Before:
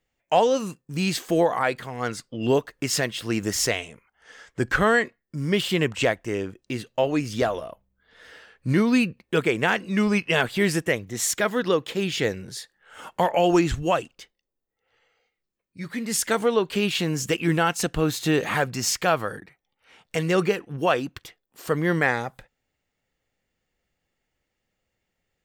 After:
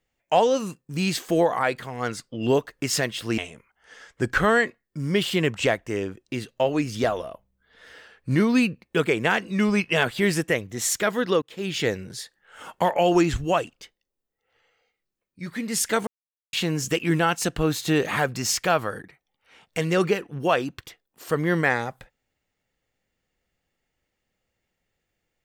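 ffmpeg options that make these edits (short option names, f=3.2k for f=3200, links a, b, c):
-filter_complex "[0:a]asplit=5[a][b][c][d][e];[a]atrim=end=3.382[f];[b]atrim=start=3.758:end=11.8,asetpts=PTS-STARTPTS,afade=t=out:st=8.038:d=0.004:c=hsin[g];[c]atrim=start=11.8:end=16.45,asetpts=PTS-STARTPTS,afade=t=in:d=0.35,afade=t=out:st=4.646:d=0.004:c=hsin[h];[d]atrim=start=16.45:end=16.91,asetpts=PTS-STARTPTS,volume=0[i];[e]atrim=start=16.91,asetpts=PTS-STARTPTS,afade=t=in:d=0.004:c=hsin[j];[g][h][i][j]concat=n=4:v=0:a=1[k];[f][k]acrossfade=d=0.004:c1=hsin:c2=hsin"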